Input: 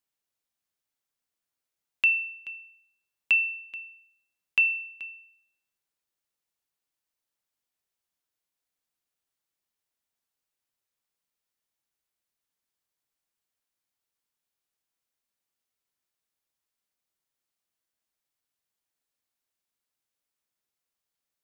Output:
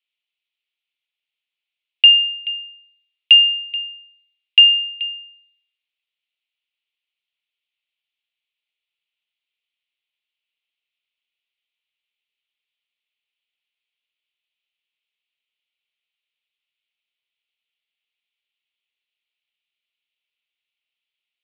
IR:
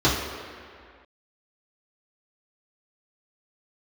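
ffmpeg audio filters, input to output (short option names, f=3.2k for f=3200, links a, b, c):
-af "aexciter=amount=15.1:drive=8:freq=2.2k,highpass=f=230:t=q:w=0.5412,highpass=f=230:t=q:w=1.307,lowpass=f=2.9k:t=q:w=0.5176,lowpass=f=2.9k:t=q:w=0.7071,lowpass=f=2.9k:t=q:w=1.932,afreqshift=130,equalizer=f=1.4k:w=5.5:g=9,volume=-8.5dB"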